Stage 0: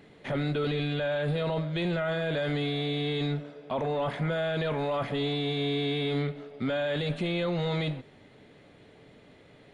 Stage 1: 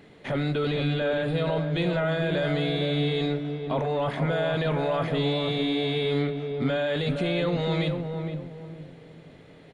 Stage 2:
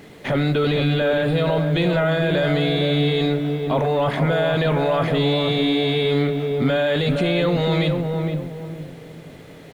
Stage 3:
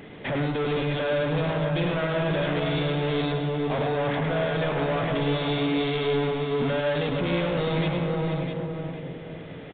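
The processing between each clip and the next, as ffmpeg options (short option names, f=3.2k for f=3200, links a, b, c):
-filter_complex "[0:a]asplit=2[a][b];[b]adelay=463,lowpass=f=810:p=1,volume=-4dB,asplit=2[c][d];[d]adelay=463,lowpass=f=810:p=1,volume=0.38,asplit=2[e][f];[f]adelay=463,lowpass=f=810:p=1,volume=0.38,asplit=2[g][h];[h]adelay=463,lowpass=f=810:p=1,volume=0.38,asplit=2[i][j];[j]adelay=463,lowpass=f=810:p=1,volume=0.38[k];[a][c][e][g][i][k]amix=inputs=6:normalize=0,volume=2.5dB"
-filter_complex "[0:a]asplit=2[a][b];[b]alimiter=limit=-23dB:level=0:latency=1,volume=-1.5dB[c];[a][c]amix=inputs=2:normalize=0,acrusher=bits=8:mix=0:aa=0.5,volume=3dB"
-af "asoftclip=type=tanh:threshold=-24.5dB,aecho=1:1:105|654:0.501|0.398,aresample=8000,aresample=44100"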